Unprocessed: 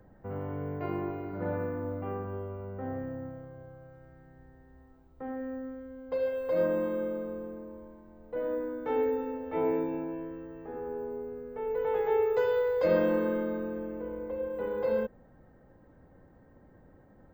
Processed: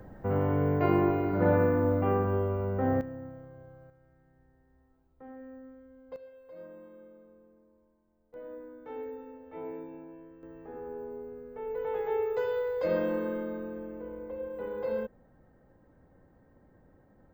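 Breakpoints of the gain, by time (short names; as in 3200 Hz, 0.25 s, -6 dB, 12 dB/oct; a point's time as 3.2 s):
+9 dB
from 3.01 s -2.5 dB
from 3.9 s -9.5 dB
from 6.16 s -20 dB
from 8.34 s -11.5 dB
from 10.43 s -3.5 dB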